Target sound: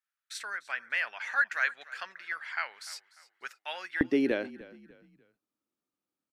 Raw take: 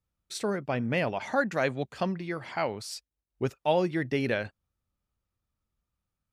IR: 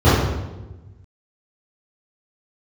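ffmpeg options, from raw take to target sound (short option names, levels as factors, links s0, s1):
-filter_complex "[0:a]asetnsamples=n=441:p=0,asendcmd='4.01 highpass f 300',highpass=f=1600:t=q:w=3.6,asplit=4[s0][s1][s2][s3];[s1]adelay=297,afreqshift=-31,volume=0.112[s4];[s2]adelay=594,afreqshift=-62,volume=0.0403[s5];[s3]adelay=891,afreqshift=-93,volume=0.0146[s6];[s0][s4][s5][s6]amix=inputs=4:normalize=0,volume=0.631"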